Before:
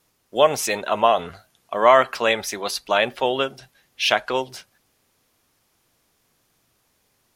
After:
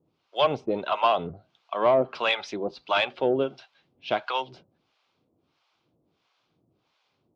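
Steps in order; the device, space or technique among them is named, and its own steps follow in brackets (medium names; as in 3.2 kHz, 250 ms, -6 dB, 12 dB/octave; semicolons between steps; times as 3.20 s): guitar amplifier with harmonic tremolo (harmonic tremolo 1.5 Hz, depth 100%, crossover 670 Hz; saturation -14 dBFS, distortion -16 dB; cabinet simulation 85–4200 Hz, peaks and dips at 160 Hz +4 dB, 320 Hz +5 dB, 1.8 kHz -10 dB); trim +2 dB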